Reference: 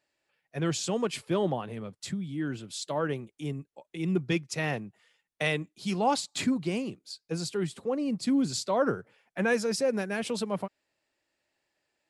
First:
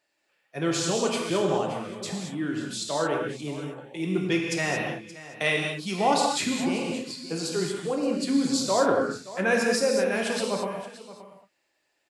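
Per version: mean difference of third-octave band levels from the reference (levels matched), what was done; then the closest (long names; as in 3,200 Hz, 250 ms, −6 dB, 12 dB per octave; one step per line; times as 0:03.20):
9.0 dB: low-shelf EQ 150 Hz −11.5 dB
on a send: single-tap delay 574 ms −16 dB
on the sum: reverb whose tail is shaped and stops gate 250 ms flat, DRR −0.5 dB
level +2.5 dB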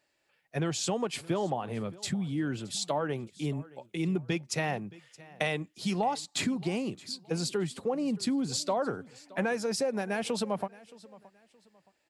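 4.0 dB: dynamic equaliser 780 Hz, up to +7 dB, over −45 dBFS, Q 2.5
downward compressor 6 to 1, threshold −31 dBFS, peak gain reduction 14.5 dB
on a send: repeating echo 621 ms, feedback 30%, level −21 dB
on the sum: level +4 dB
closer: second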